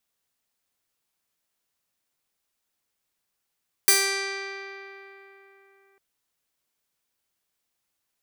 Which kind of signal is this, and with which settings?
Karplus-Strong string G4, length 2.10 s, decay 3.66 s, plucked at 0.29, bright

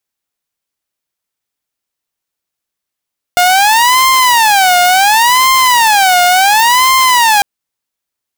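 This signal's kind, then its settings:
siren wail 713–1,050 Hz 0.7 per second saw −3.5 dBFS 4.05 s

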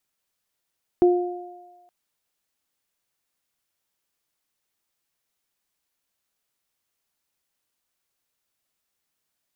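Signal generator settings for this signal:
harmonic partials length 0.87 s, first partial 355 Hz, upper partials −13 dB, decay 0.92 s, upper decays 1.72 s, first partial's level −11 dB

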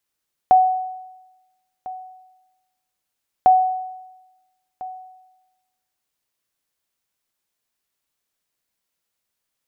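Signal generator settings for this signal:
ping with an echo 745 Hz, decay 1.06 s, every 2.95 s, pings 2, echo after 1.35 s, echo −19.5 dB −6.5 dBFS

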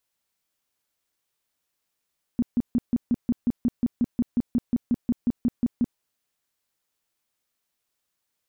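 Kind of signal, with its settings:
tone bursts 240 Hz, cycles 8, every 0.18 s, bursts 20, −17.5 dBFS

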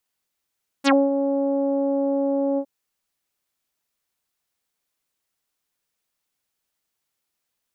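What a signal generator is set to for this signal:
subtractive voice saw C#4 24 dB per octave, low-pass 660 Hz, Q 3.1, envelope 4.5 octaves, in 0.09 s, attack 36 ms, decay 0.22 s, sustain −8 dB, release 0.07 s, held 1.74 s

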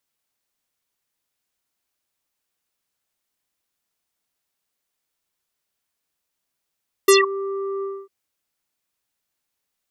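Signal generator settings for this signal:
subtractive voice square G4 24 dB per octave, low-pass 950 Hz, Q 7.8, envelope 4 octaves, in 0.17 s, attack 6 ms, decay 0.17 s, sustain −17 dB, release 0.25 s, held 0.75 s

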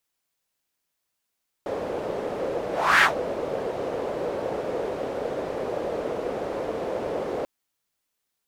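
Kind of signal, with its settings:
pass-by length 5.79 s, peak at 0:01.36, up 0.34 s, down 0.13 s, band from 500 Hz, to 1,700 Hz, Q 3, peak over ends 13 dB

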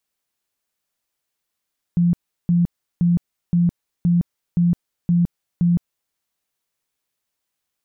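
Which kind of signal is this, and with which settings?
tone bursts 173 Hz, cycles 28, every 0.52 s, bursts 8, −13 dBFS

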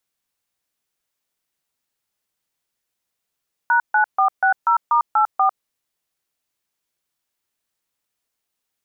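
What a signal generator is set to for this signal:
touch tones "#9460*84", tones 100 ms, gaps 142 ms, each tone −15.5 dBFS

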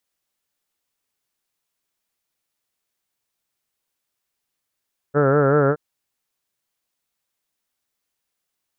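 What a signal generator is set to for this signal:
vowel by formant synthesis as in heard, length 0.62 s, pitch 140 Hz, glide +0.5 semitones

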